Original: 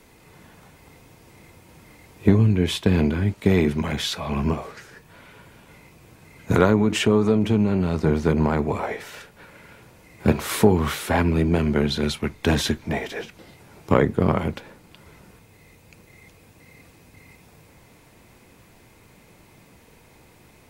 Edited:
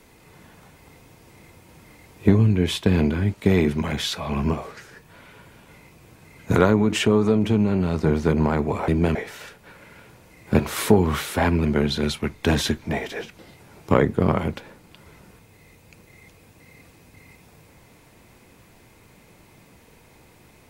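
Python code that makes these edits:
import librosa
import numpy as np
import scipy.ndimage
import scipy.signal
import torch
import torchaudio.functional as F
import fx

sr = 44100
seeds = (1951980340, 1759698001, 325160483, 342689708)

y = fx.edit(x, sr, fx.move(start_s=11.38, length_s=0.27, to_s=8.88), tone=tone)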